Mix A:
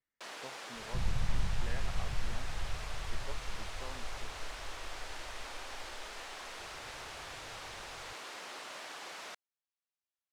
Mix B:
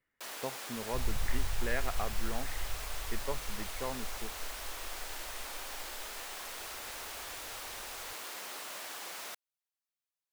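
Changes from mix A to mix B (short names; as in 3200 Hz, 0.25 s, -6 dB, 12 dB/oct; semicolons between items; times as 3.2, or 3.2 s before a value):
speech +10.5 dB; second sound: add bell 180 Hz -13 dB 1.3 oct; master: remove air absorption 73 m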